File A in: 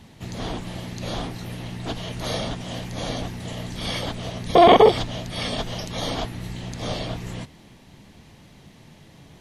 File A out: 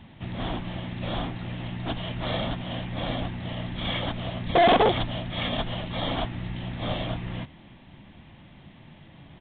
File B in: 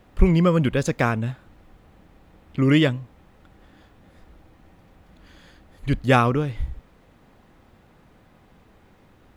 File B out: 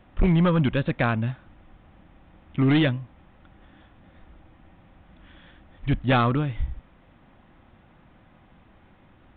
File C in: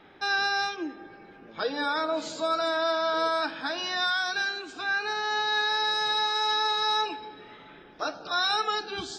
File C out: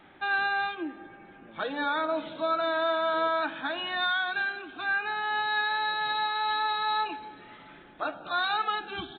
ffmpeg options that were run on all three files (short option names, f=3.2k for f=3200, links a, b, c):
-af "equalizer=f=440:w=5.6:g=-9.5,aresample=8000,asoftclip=type=hard:threshold=-15dB,aresample=44100"